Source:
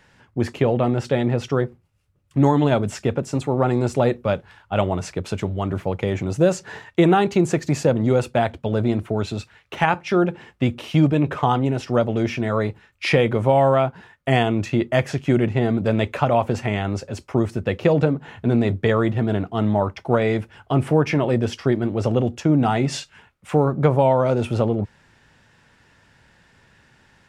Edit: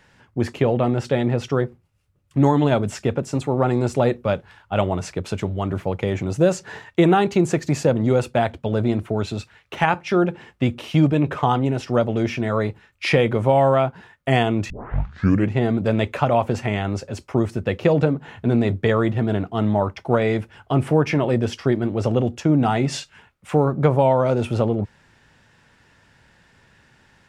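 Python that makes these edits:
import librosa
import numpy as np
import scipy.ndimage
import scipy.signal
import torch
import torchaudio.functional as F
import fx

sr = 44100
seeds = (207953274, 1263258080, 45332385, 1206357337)

y = fx.edit(x, sr, fx.tape_start(start_s=14.7, length_s=0.81), tone=tone)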